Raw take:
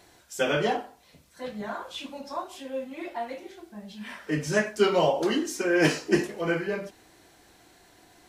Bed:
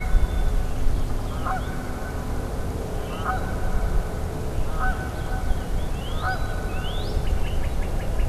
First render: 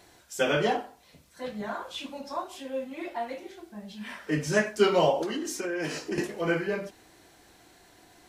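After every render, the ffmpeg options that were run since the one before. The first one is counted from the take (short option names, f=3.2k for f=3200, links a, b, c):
-filter_complex "[0:a]asettb=1/sr,asplit=3[a][b][c];[a]atrim=end=5.224[d];[b]atrim=start=5.22:end=6.18,asetpts=PTS-STARTPTS,afade=t=in:d=0.004:c=qsin,afade=t=out:st=0.956:d=0.004:c=qsin,acompressor=threshold=-28dB:ratio=6:attack=3.2:release=140:knee=1:detection=peak[e];[c]atrim=start=6.176[f];[d][e]acrossfade=d=0.004:c1=hsin:c2=qsin[g];[g][f]acrossfade=d=0.004:c1=qsin:c2=hsin"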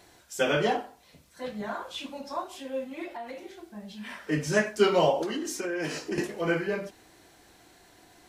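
-filter_complex "[0:a]asettb=1/sr,asplit=3[a][b][c];[a]atrim=end=3.044[d];[b]atrim=start=3.04:end=4.15,asetpts=PTS-STARTPTS,afade=t=in:d=0.004:c=qsin,afade=t=out:st=1.106:d=0.004:c=qsin,acompressor=threshold=-35dB:ratio=4:attack=3.2:release=140:knee=1:detection=peak[e];[c]atrim=start=4.146[f];[d][e]acrossfade=d=0.004:c1=hsin:c2=qsin[g];[g][f]acrossfade=d=0.004:c1=qsin:c2=hsin"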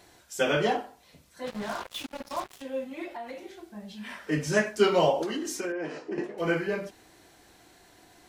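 -filter_complex "[0:a]asettb=1/sr,asplit=3[a][b][c];[a]atrim=end=1.474[d];[b]atrim=start=1.47:end=2.62,asetpts=PTS-STARTPTS,afade=t=in:d=0.004:c=qsin,afade=t=out:st=1.146:d=0.004:c=qsin,acrusher=bits=5:mix=0:aa=0.5[e];[c]atrim=start=2.616[f];[d][e]acrossfade=d=0.004:c1=hsin:c2=qsin[g];[g][f]acrossfade=d=0.004:c1=qsin:c2=hsin,asettb=1/sr,asplit=3[h][i][j];[h]atrim=end=5.724[k];[i]atrim=start=5.72:end=6.38,asetpts=PTS-STARTPTS,afade=t=in:d=0.004:c=qsin,afade=t=out:st=0.656:d=0.004:c=qsin,bandpass=f=590:t=q:w=0.61[l];[j]atrim=start=6.376[m];[k][l]acrossfade=d=0.004:c1=hsin:c2=qsin[n];[n][m]acrossfade=d=0.004:c1=qsin:c2=hsin"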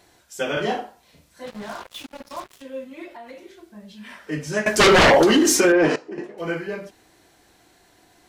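-filter_complex "[0:a]asettb=1/sr,asplit=3[a][b][c];[a]atrim=end=0.534[d];[b]atrim=start=0.53:end=1.46,asetpts=PTS-STARTPTS,afade=t=in:d=0.004:c=qsin,afade=t=out:st=0.926:d=0.004:c=qsin,asplit=2[e][f];[f]adelay=37,volume=-2.5dB[g];[e][g]amix=inputs=2:normalize=0,atrim=end_sample=41013[h];[c]atrim=start=1.456[i];[d][h]acrossfade=d=0.004:c1=hsin:c2=qsin[j];[j][i]acrossfade=d=0.004:c1=qsin:c2=hsin,asettb=1/sr,asplit=3[k][l][m];[k]atrim=end=2.254[n];[l]atrim=start=2.25:end=4.13,asetpts=PTS-STARTPTS,afade=t=in:d=0.004:c=qsin,afade=t=out:st=1.876:d=0.004:c=qsin,bandreject=f=780:w=6.2[o];[m]atrim=start=4.126[p];[n][o]acrossfade=d=0.004:c1=hsin:c2=qsin[q];[q][p]acrossfade=d=0.004:c1=qsin:c2=hsin,asettb=1/sr,asplit=3[r][s][t];[r]atrim=end=4.664[u];[s]atrim=start=4.66:end=5.96,asetpts=PTS-STARTPTS,afade=t=in:d=0.004:c=qsin,afade=t=out:st=1.296:d=0.004:c=qsin,aeval=exprs='0.335*sin(PI/2*5.01*val(0)/0.335)':c=same[v];[t]atrim=start=5.956[w];[u][v]acrossfade=d=0.004:c1=hsin:c2=qsin[x];[x][w]acrossfade=d=0.004:c1=qsin:c2=hsin"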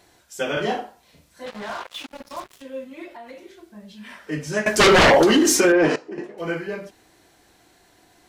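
-filter_complex "[0:a]asettb=1/sr,asplit=3[a][b][c];[a]atrim=end=1.464[d];[b]atrim=start=1.46:end=2.08,asetpts=PTS-STARTPTS,afade=t=in:d=0.004:c=qsin,afade=t=out:st=0.616:d=0.004:c=qsin,asplit=2[e][f];[f]highpass=f=720:p=1,volume=12dB,asoftclip=type=tanh:threshold=-21.5dB[g];[e][g]amix=inputs=2:normalize=0,lowpass=f=3.9k:p=1,volume=-6dB[h];[c]atrim=start=2.076[i];[d][h]acrossfade=d=0.004:c1=hsin:c2=qsin[j];[j][i]acrossfade=d=0.004:c1=qsin:c2=hsin"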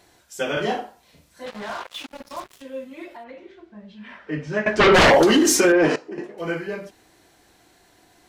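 -filter_complex "[0:a]asplit=3[a][b][c];[a]afade=t=out:st=3.23:d=0.02[d];[b]lowpass=2.9k,afade=t=in:st=3.23:d=0.02,afade=t=out:st=4.93:d=0.02[e];[c]afade=t=in:st=4.93:d=0.02[f];[d][e][f]amix=inputs=3:normalize=0"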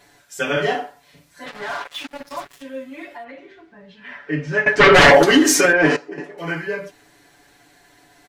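-af "equalizer=f=1.8k:t=o:w=0.75:g=5,aecho=1:1:7:0.83"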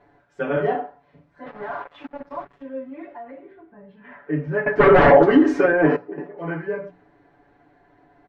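-af "lowpass=1.1k,bandreject=f=60:t=h:w=6,bandreject=f=120:t=h:w=6,bandreject=f=180:t=h:w=6"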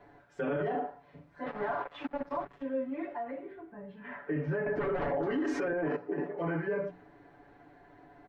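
-filter_complex "[0:a]acrossover=split=370|770[a][b][c];[a]acompressor=threshold=-30dB:ratio=4[d];[b]acompressor=threshold=-30dB:ratio=4[e];[c]acompressor=threshold=-36dB:ratio=4[f];[d][e][f]amix=inputs=3:normalize=0,alimiter=level_in=0.5dB:limit=-24dB:level=0:latency=1:release=27,volume=-0.5dB"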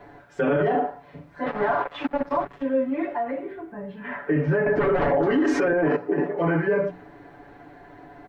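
-af "volume=10.5dB"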